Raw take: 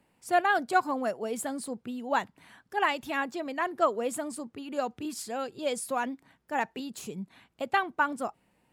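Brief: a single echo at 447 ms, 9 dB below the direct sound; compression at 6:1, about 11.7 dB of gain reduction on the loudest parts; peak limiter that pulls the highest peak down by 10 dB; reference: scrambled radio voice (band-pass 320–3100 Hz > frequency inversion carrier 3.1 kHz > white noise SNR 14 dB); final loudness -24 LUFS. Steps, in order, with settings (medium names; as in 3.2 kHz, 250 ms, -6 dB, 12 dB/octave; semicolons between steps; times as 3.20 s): compression 6:1, threshold -32 dBFS; peak limiter -31 dBFS; band-pass 320–3100 Hz; delay 447 ms -9 dB; frequency inversion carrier 3.1 kHz; white noise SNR 14 dB; trim +15.5 dB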